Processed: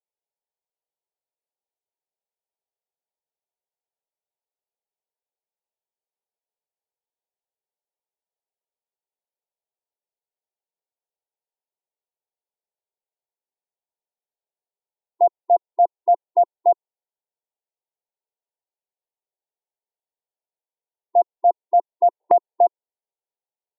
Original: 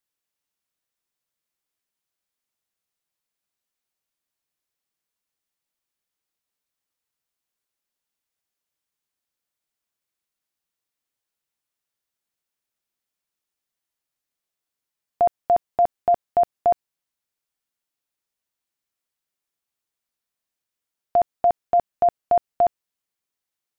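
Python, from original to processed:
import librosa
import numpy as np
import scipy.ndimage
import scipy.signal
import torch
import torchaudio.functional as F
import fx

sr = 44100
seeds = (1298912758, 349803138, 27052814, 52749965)

p1 = fx.level_steps(x, sr, step_db=16)
p2 = x + (p1 * librosa.db_to_amplitude(3.0))
p3 = fx.brickwall_bandpass(p2, sr, low_hz=360.0, high_hz=1000.0)
p4 = fx.band_squash(p3, sr, depth_pct=70, at=(22.2, 22.66))
y = p4 * librosa.db_to_amplitude(-4.0)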